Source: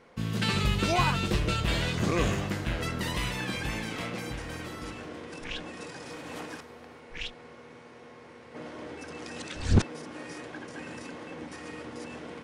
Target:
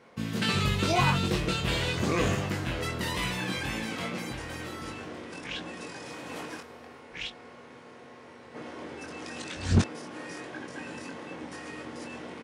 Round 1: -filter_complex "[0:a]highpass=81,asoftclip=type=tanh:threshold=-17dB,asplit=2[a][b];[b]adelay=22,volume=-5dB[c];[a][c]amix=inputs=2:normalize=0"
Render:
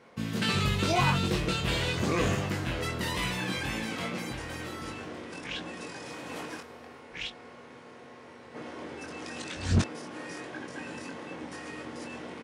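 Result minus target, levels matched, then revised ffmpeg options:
soft clip: distortion +10 dB
-filter_complex "[0:a]highpass=81,asoftclip=type=tanh:threshold=-9dB,asplit=2[a][b];[b]adelay=22,volume=-5dB[c];[a][c]amix=inputs=2:normalize=0"

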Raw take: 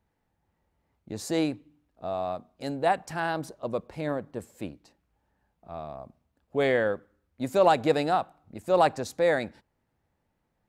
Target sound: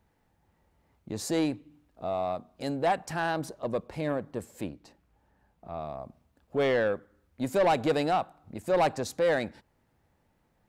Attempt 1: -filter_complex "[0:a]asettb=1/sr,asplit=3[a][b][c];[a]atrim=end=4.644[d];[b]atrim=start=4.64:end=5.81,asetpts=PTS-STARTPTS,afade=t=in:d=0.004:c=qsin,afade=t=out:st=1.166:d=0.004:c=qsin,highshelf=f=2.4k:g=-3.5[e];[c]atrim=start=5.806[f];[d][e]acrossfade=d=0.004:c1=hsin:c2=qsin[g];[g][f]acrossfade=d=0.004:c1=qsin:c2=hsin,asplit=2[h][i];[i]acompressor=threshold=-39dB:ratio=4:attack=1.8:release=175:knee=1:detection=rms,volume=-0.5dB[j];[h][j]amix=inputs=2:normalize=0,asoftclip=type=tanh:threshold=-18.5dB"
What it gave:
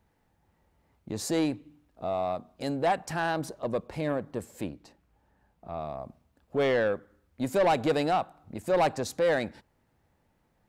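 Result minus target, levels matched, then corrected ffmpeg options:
compressor: peak gain reduction -5 dB
-filter_complex "[0:a]asettb=1/sr,asplit=3[a][b][c];[a]atrim=end=4.644[d];[b]atrim=start=4.64:end=5.81,asetpts=PTS-STARTPTS,afade=t=in:d=0.004:c=qsin,afade=t=out:st=1.166:d=0.004:c=qsin,highshelf=f=2.4k:g=-3.5[e];[c]atrim=start=5.806[f];[d][e]acrossfade=d=0.004:c1=hsin:c2=qsin[g];[g][f]acrossfade=d=0.004:c1=qsin:c2=hsin,asplit=2[h][i];[i]acompressor=threshold=-46dB:ratio=4:attack=1.8:release=175:knee=1:detection=rms,volume=-0.5dB[j];[h][j]amix=inputs=2:normalize=0,asoftclip=type=tanh:threshold=-18.5dB"

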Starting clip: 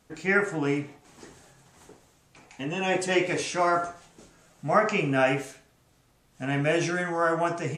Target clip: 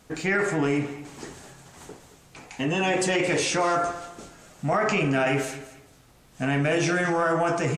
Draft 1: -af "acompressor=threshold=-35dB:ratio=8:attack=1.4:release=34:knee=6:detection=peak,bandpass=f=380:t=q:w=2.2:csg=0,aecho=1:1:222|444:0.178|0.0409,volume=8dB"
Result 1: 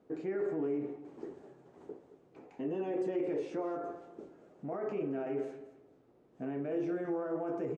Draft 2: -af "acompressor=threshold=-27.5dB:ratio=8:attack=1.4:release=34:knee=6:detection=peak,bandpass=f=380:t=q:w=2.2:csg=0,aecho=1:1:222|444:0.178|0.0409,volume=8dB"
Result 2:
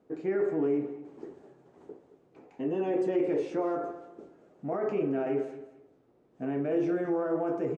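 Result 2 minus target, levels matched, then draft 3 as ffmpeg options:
500 Hz band +3.0 dB
-af "acompressor=threshold=-27.5dB:ratio=8:attack=1.4:release=34:knee=6:detection=peak,aecho=1:1:222|444:0.178|0.0409,volume=8dB"

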